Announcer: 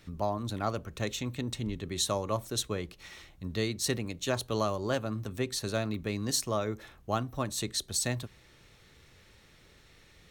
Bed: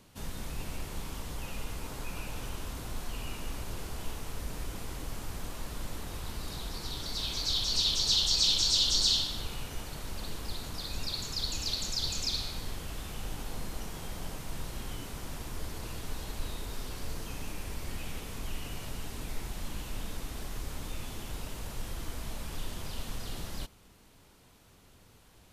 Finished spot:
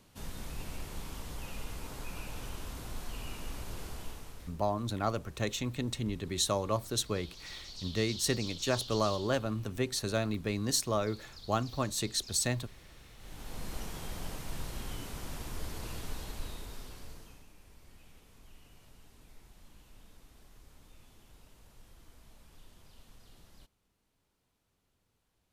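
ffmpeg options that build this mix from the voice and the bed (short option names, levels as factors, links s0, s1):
-filter_complex "[0:a]adelay=4400,volume=1[s0];[1:a]volume=4.73,afade=t=out:st=3.88:d=0.7:silence=0.188365,afade=t=in:st=13.17:d=0.58:silence=0.149624,afade=t=out:st=15.97:d=1.49:silence=0.125893[s1];[s0][s1]amix=inputs=2:normalize=0"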